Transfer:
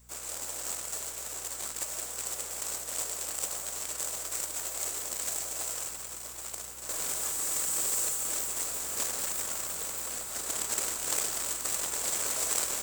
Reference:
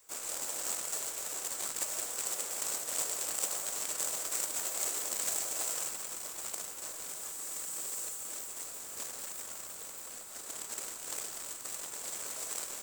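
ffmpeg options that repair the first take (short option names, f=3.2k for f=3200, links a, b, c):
-af "bandreject=f=60.6:t=h:w=4,bandreject=f=121.2:t=h:w=4,bandreject=f=181.8:t=h:w=4,bandreject=f=242.4:t=h:w=4,asetnsamples=n=441:p=0,asendcmd='6.89 volume volume -9dB',volume=0dB"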